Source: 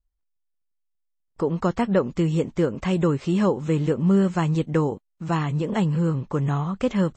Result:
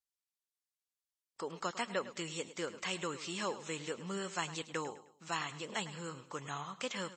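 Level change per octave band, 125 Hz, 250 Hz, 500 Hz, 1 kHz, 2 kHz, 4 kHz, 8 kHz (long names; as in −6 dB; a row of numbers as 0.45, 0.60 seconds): −26.0 dB, −23.0 dB, −16.5 dB, −10.5 dB, −5.0 dB, −1.0 dB, can't be measured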